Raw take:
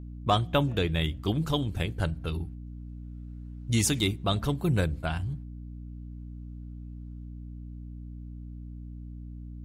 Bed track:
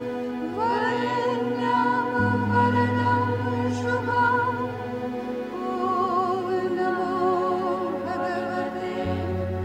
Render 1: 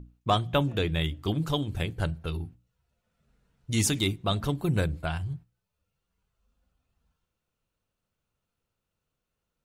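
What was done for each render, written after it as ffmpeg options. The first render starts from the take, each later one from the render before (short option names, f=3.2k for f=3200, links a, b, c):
-af "bandreject=f=60:t=h:w=6,bandreject=f=120:t=h:w=6,bandreject=f=180:t=h:w=6,bandreject=f=240:t=h:w=6,bandreject=f=300:t=h:w=6"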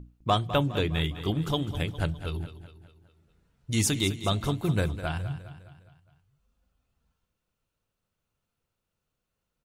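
-af "aecho=1:1:205|410|615|820|1025:0.224|0.112|0.056|0.028|0.014"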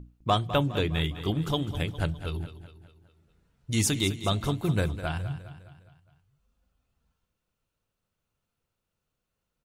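-af anull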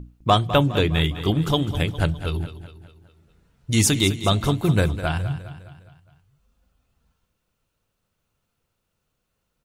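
-af "volume=7dB"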